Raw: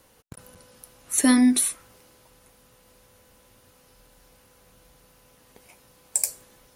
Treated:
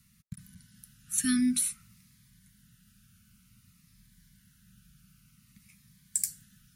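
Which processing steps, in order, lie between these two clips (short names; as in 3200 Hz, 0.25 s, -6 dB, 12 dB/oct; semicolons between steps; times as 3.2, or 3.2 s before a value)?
elliptic band-stop 200–1400 Hz, stop band 40 dB; bell 180 Hz +11 dB 2.2 oct; cascading phaser falling 0.54 Hz; gain -5.5 dB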